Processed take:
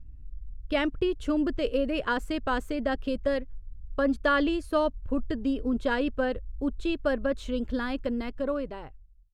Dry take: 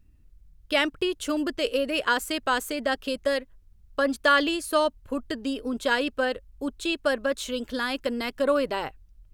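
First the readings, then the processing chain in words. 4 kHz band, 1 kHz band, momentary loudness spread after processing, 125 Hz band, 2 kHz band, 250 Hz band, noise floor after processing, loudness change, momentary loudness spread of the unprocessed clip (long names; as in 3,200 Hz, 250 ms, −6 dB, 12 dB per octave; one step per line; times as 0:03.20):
−9.5 dB, −4.5 dB, 8 LU, can't be measured, −6.0 dB, +1.5 dB, −48 dBFS, −2.5 dB, 7 LU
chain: fade-out on the ending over 1.53 s
RIAA equalisation playback
level −4 dB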